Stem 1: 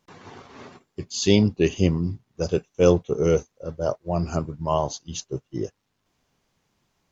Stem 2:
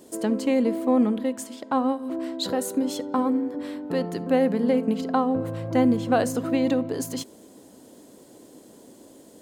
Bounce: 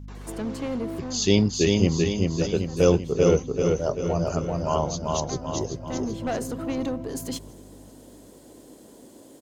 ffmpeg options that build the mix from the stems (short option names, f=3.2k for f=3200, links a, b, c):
-filter_complex "[0:a]highshelf=f=6.3k:g=6,aeval=exprs='val(0)+0.0158*(sin(2*PI*50*n/s)+sin(2*PI*2*50*n/s)/2+sin(2*PI*3*50*n/s)/3+sin(2*PI*4*50*n/s)/4+sin(2*PI*5*50*n/s)/5)':c=same,volume=-2dB,asplit=3[a][b][c];[b]volume=-3dB[d];[1:a]asoftclip=type=tanh:threshold=-18.5dB,adelay=150,volume=0.5dB[e];[c]apad=whole_len=421712[f];[e][f]sidechaincompress=threshold=-39dB:ratio=8:attack=5.1:release=652[g];[d]aecho=0:1:388|776|1164|1552|1940|2328|2716|3104:1|0.52|0.27|0.141|0.0731|0.038|0.0198|0.0103[h];[a][g][h]amix=inputs=3:normalize=0"